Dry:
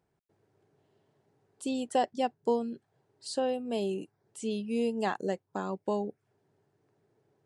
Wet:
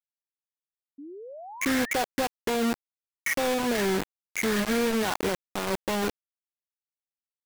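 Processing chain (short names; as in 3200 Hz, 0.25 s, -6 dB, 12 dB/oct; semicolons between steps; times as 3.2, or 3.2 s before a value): nonlinear frequency compression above 1400 Hz 4:1; limiter -27.5 dBFS, peak gain reduction 11.5 dB; bit-crush 6-bit; painted sound rise, 0.98–1.97, 270–2200 Hz -50 dBFS; gain +8.5 dB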